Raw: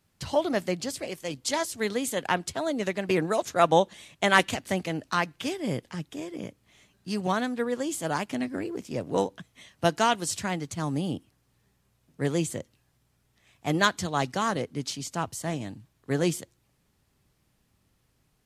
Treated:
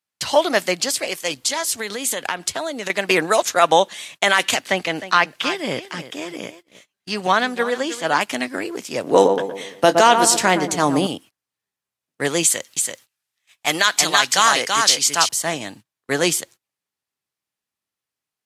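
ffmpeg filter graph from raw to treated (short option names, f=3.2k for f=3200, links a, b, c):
-filter_complex "[0:a]asettb=1/sr,asplit=3[a][b][c];[a]atrim=end=1.364[d];[b]atrim=start=1.36:end=2.9,asetpts=PTS-STARTPTS,afade=t=in:d=0.004:c=qsin,afade=t=out:st=1.536:d=0.004:c=qsin,lowshelf=f=110:g=10.5,acompressor=threshold=-30dB:ratio=10:attack=3.2:release=140:knee=1:detection=peak[e];[c]atrim=start=2.896[f];[d][e]acrossfade=d=0.004:c1=hsin:c2=qsin[g];[g][f]acrossfade=d=0.004:c1=qsin:c2=hsin,asettb=1/sr,asplit=3[h][i][j];[h]atrim=end=4.594[k];[i]atrim=start=4.59:end=8.21,asetpts=PTS-STARTPTS,afade=t=in:d=0.004:c=qsin,afade=t=out:st=3.616:d=0.004:c=qsin,acrossover=split=4900[l][m];[m]acompressor=threshold=-57dB:ratio=4:attack=1:release=60[n];[l][n]amix=inputs=2:normalize=0,aecho=1:1:312:0.2,atrim=end_sample=159642[o];[j]atrim=start=8.206[p];[k][o]acrossfade=d=0.004:c1=hsin:c2=qsin[q];[q][p]acrossfade=d=0.004:c1=qsin:c2=hsin,asettb=1/sr,asplit=3[r][s][t];[r]atrim=end=9.044[u];[s]atrim=start=9.04:end=11.07,asetpts=PTS-STARTPTS,afade=t=in:d=0.004:c=qsin,afade=t=out:st=2.026:d=0.004:c=qsin,equalizer=f=370:t=o:w=2.7:g=9,asplit=2[v][w];[w]adelay=21,volume=-14dB[x];[v][x]amix=inputs=2:normalize=0,atrim=end_sample=89523,asplit=2[y][z];[z]adelay=116,lowpass=f=1.1k:p=1,volume=-8dB,asplit=2[aa][ab];[ab]adelay=116,lowpass=f=1.1k:p=1,volume=0.51,asplit=2[ac][ad];[ad]adelay=116,lowpass=f=1.1k:p=1,volume=0.51,asplit=2[ae][af];[af]adelay=116,lowpass=f=1.1k:p=1,volume=0.51,asplit=2[ag][ah];[ah]adelay=116,lowpass=f=1.1k:p=1,volume=0.51,asplit=2[ai][aj];[aj]adelay=116,lowpass=f=1.1k:p=1,volume=0.51[ak];[y][aa][ac][ae][ag][ai][ak]amix=inputs=7:normalize=0,atrim=end_sample=89523[al];[t]atrim=start=11.066[am];[u][al]acrossfade=d=0.004:c1=hsin:c2=qsin[an];[an][am]acrossfade=d=0.004:c1=qsin:c2=hsin,asettb=1/sr,asplit=3[ao][ap][aq];[ao]atrim=end=12.434[ar];[ap]atrim=start=12.43:end=15.29,asetpts=PTS-STARTPTS,afade=t=in:d=0.004:c=qsin,afade=t=out:st=2.856:d=0.004:c=qsin,tiltshelf=f=940:g=-5.5,aecho=1:1:333:0.596,atrim=end_sample=126126[as];[aq]atrim=start=15.286[at];[ar][as]acrossfade=d=0.004:c1=hsin:c2=qsin[au];[au][at]acrossfade=d=0.004:c1=qsin:c2=hsin,highpass=f=1.1k:p=1,agate=range=-26dB:threshold=-56dB:ratio=16:detection=peak,alimiter=level_in=16dB:limit=-1dB:release=50:level=0:latency=1,volume=-1dB"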